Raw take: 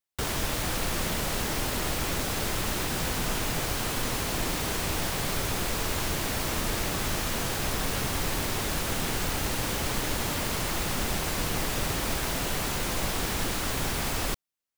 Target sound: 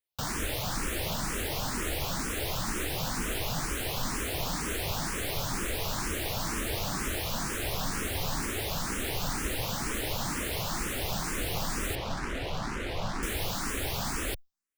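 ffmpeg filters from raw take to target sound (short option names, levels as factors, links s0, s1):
-filter_complex "[0:a]asettb=1/sr,asplit=3[s0][s1][s2];[s0]atrim=end=11.954[s3];[s1]atrim=start=11.95:end=13.23,asetpts=PTS-STARTPTS,afade=t=in:d=0.004:c=qsin,afade=t=out:st=1.276:d=0.004:c=qsin,adynamicsmooth=sensitivity=5:basefreq=2000[s4];[s2]atrim=start=13.226[s5];[s3][s4]acrossfade=d=0.004:c1=hsin:c2=qsin[s6];[s6][s5]acrossfade=d=0.004:c1=qsin:c2=hsin,asplit=2[s7][s8];[s8]afreqshift=2.1[s9];[s7][s9]amix=inputs=2:normalize=1"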